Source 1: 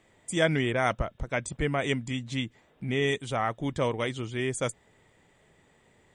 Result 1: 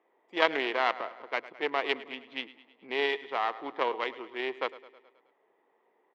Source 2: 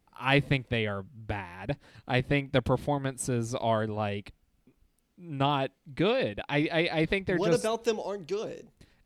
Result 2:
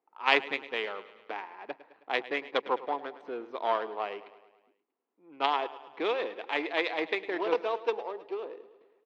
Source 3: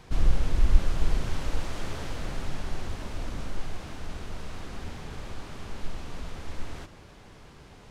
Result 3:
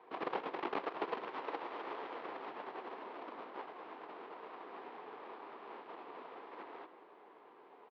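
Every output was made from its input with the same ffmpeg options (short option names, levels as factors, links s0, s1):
-filter_complex "[0:a]adynamicsmooth=sensitivity=3:basefreq=1200,aeval=exprs='0.596*(cos(1*acos(clip(val(0)/0.596,-1,1)))-cos(1*PI/2))+0.0133*(cos(7*acos(clip(val(0)/0.596,-1,1)))-cos(7*PI/2))':c=same,asplit=2[s0][s1];[s1]aecho=0:1:106|212|318|424|530|636:0.158|0.0935|0.0552|0.0326|0.0192|0.0113[s2];[s0][s2]amix=inputs=2:normalize=0,aeval=exprs='0.562*(cos(1*acos(clip(val(0)/0.562,-1,1)))-cos(1*PI/2))+0.112*(cos(4*acos(clip(val(0)/0.562,-1,1)))-cos(4*PI/2))+0.0158*(cos(7*acos(clip(val(0)/0.562,-1,1)))-cos(7*PI/2))':c=same,highpass=f=390:w=0.5412,highpass=f=390:w=1.3066,equalizer=f=580:t=q:w=4:g=-7,equalizer=f=1000:t=q:w=4:g=4,equalizer=f=1500:t=q:w=4:g=-4,lowpass=f=4200:w=0.5412,lowpass=f=4200:w=1.3066,volume=1.5"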